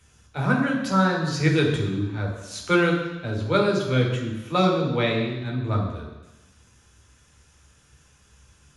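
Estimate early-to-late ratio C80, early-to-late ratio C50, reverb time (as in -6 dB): 6.5 dB, 4.5 dB, 1.0 s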